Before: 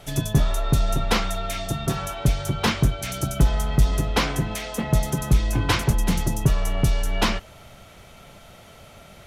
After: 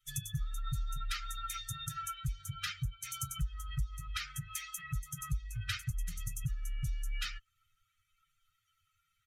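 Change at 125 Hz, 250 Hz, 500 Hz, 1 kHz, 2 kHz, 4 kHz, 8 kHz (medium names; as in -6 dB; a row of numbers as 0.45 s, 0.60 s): -17.0 dB, -24.0 dB, under -40 dB, -16.5 dB, -14.5 dB, -13.0 dB, -10.5 dB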